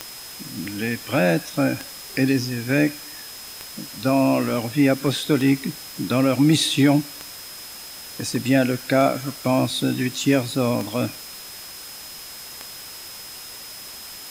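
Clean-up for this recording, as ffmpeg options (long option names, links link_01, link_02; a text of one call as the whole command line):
ffmpeg -i in.wav -af "adeclick=threshold=4,bandreject=frequency=5100:width=30,afwtdn=0.013" out.wav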